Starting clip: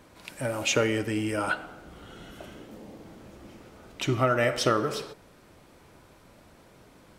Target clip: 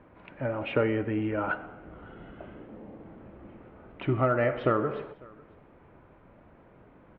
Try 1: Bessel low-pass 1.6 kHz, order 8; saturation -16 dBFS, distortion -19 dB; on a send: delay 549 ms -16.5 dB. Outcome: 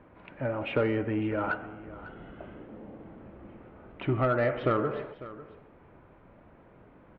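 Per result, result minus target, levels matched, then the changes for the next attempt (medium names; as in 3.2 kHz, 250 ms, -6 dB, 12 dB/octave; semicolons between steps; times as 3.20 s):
saturation: distortion +14 dB; echo-to-direct +8.5 dB
change: saturation -7.5 dBFS, distortion -33 dB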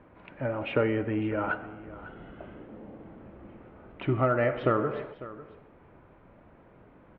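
echo-to-direct +8.5 dB
change: delay 549 ms -25 dB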